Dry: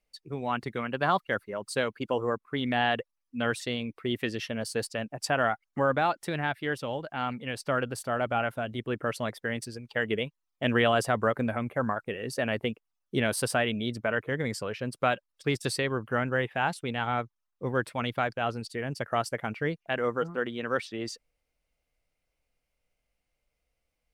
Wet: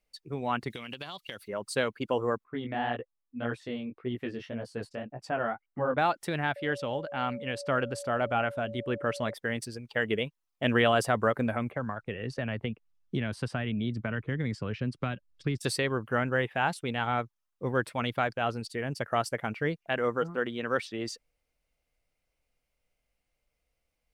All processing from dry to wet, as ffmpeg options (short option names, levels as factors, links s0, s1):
-filter_complex "[0:a]asettb=1/sr,asplit=3[s0][s1][s2];[s0]atrim=end=0.704[s3];[s1]atrim=start=0.7:end=1.48,asetpts=PTS-STARTPTS,afade=t=in:d=0.004:c=qsin,afade=t=out:st=0.776:d=0.004:c=qsin,highshelf=f=2200:t=q:w=1.5:g=13,acompressor=threshold=0.0178:ratio=16:attack=3.2:release=140:knee=1:detection=peak[s4];[s2]atrim=start=1.476[s5];[s3][s4]acrossfade=d=0.004:c1=hsin:c2=qsin[s6];[s6][s5]acrossfade=d=0.004:c1=qsin:c2=hsin,asettb=1/sr,asplit=3[s7][s8][s9];[s7]atrim=end=2.444[s10];[s8]atrim=start=2.44:end=5.98,asetpts=PTS-STARTPTS,afade=t=in:d=0.004:c=qsin,afade=t=out:st=3.536:d=0.004:c=qsin,lowpass=f=1200:p=1,flanger=delay=15.5:depth=6.9:speed=1.8[s11];[s9]atrim=start=5.976[s12];[s10][s11]acrossfade=d=0.004:c1=hsin:c2=qsin[s13];[s13][s12]acrossfade=d=0.004:c1=qsin:c2=hsin,asettb=1/sr,asplit=3[s14][s15][s16];[s14]atrim=end=6.564[s17];[s15]atrim=start=6.56:end=9.34,asetpts=PTS-STARTPTS,afade=t=in:d=0.004:c=qsin,afade=t=out:st=2.776:d=0.004:c=qsin,lowpass=8400,aeval=exprs='val(0)+0.0112*sin(2*PI*570*n/s)':c=same[s18];[s16]atrim=start=9.336[s19];[s17][s18]acrossfade=d=0.004:c1=hsin:c2=qsin[s20];[s20][s19]acrossfade=d=0.004:c1=qsin:c2=hsin,asettb=1/sr,asplit=3[s21][s22][s23];[s21]atrim=end=11.714[s24];[s22]atrim=start=11.71:end=15.58,asetpts=PTS-STARTPTS,afade=t=in:d=0.004:c=qsin,afade=t=out:st=3.866:d=0.004:c=qsin,lowpass=5300,asubboost=boost=12:cutoff=190,acrossover=split=270|2900[s25][s26][s27];[s25]acompressor=threshold=0.0178:ratio=4[s28];[s26]acompressor=threshold=0.0224:ratio=4[s29];[s27]acompressor=threshold=0.00316:ratio=4[s30];[s28][s29][s30]amix=inputs=3:normalize=0[s31];[s23]atrim=start=15.576[s32];[s24][s31]acrossfade=d=0.004:c1=hsin:c2=qsin[s33];[s33][s32]acrossfade=d=0.004:c1=qsin:c2=hsin"